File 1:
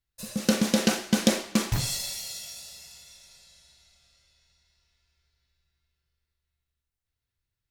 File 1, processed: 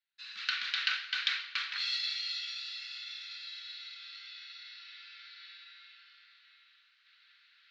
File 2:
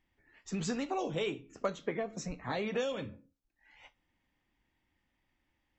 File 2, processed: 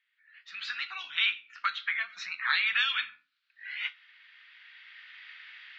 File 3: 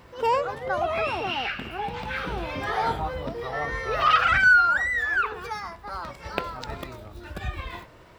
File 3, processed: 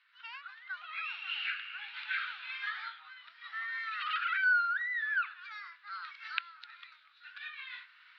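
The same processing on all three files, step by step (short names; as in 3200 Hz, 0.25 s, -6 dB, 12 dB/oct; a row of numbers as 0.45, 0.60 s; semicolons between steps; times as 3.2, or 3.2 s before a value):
recorder AGC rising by 7.6 dB/s; elliptic band-pass 1400–4200 Hz, stop band 50 dB; normalise peaks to -12 dBFS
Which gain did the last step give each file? +0.5, +6.0, -10.5 dB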